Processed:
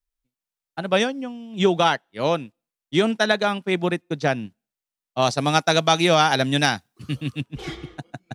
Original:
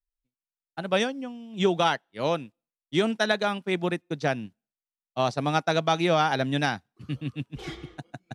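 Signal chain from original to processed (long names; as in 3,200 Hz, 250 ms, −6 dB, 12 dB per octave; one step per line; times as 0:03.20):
0:05.22–0:07.41: high-shelf EQ 4,000 Hz +11.5 dB
level +4.5 dB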